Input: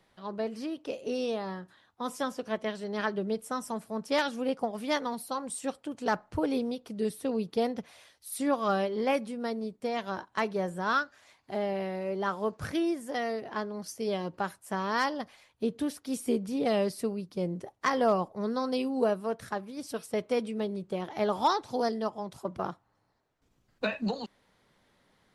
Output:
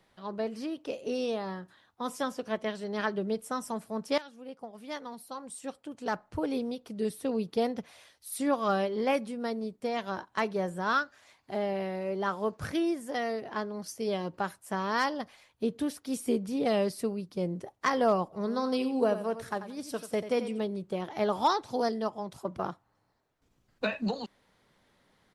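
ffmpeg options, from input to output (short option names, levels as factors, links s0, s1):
-filter_complex "[0:a]asplit=3[s0][s1][s2];[s0]afade=t=out:st=18.32:d=0.02[s3];[s1]aecho=1:1:89|178|267:0.266|0.0612|0.0141,afade=t=in:st=18.32:d=0.02,afade=t=out:st=20.58:d=0.02[s4];[s2]afade=t=in:st=20.58:d=0.02[s5];[s3][s4][s5]amix=inputs=3:normalize=0,asplit=2[s6][s7];[s6]atrim=end=4.18,asetpts=PTS-STARTPTS,afade=t=out:st=4.176:d=0.004:c=hsin:silence=0.125893[s8];[s7]atrim=start=4.18,asetpts=PTS-STARTPTS,afade=t=in:d=3.13:silence=0.125893[s9];[s8][s9]concat=n=2:v=0:a=1"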